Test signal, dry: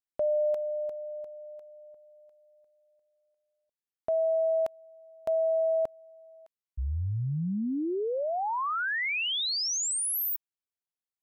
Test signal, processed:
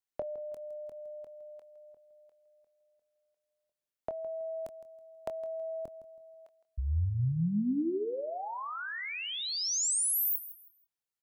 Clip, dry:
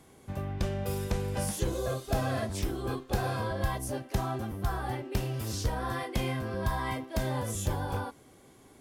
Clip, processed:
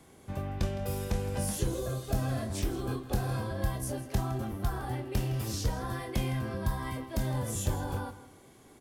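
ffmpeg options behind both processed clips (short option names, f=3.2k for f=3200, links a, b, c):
-filter_complex "[0:a]acrossover=split=350|5900[a][b][c];[b]acompressor=threshold=-39dB:ratio=6:attack=22:release=245:knee=2.83:detection=peak[d];[a][d][c]amix=inputs=3:normalize=0,asplit=2[e][f];[f]adelay=24,volume=-10dB[g];[e][g]amix=inputs=2:normalize=0,aecho=1:1:162|324|486:0.178|0.0462|0.012"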